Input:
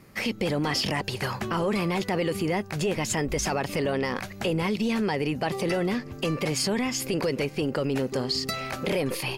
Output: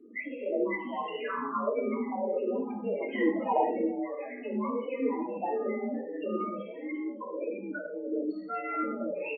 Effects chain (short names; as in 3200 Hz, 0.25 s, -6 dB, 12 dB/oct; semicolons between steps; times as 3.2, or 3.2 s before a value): 3.08–3.67 infinite clipping; limiter -26.5 dBFS, peak gain reduction 10 dB; 6.59–8.14 negative-ratio compressor -38 dBFS, ratio -0.5; mistuned SSB +52 Hz 180–3100 Hz; loudest bins only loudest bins 8; echo 0.165 s -23 dB; non-linear reverb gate 0.27 s falling, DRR -4.5 dB; dynamic EQ 1200 Hz, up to +5 dB, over -51 dBFS, Q 2.1; endless phaser -1.6 Hz; gain +2 dB